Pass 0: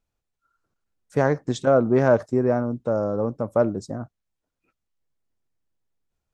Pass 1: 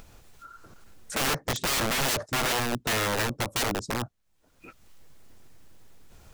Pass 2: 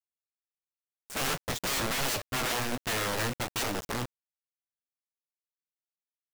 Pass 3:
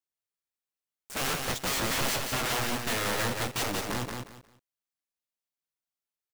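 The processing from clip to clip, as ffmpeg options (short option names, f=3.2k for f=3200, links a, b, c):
-filter_complex "[0:a]asplit=2[a][b];[b]acompressor=mode=upward:threshold=-20dB:ratio=2.5,volume=2.5dB[c];[a][c]amix=inputs=2:normalize=0,aeval=exprs='(mod(5.31*val(0)+1,2)-1)/5.31':c=same,volume=-7dB"
-af "flanger=delay=9.1:depth=9.9:regen=64:speed=1.4:shape=triangular,acrusher=bits=5:mix=0:aa=0.000001"
-af "aecho=1:1:179|358|537:0.596|0.143|0.0343"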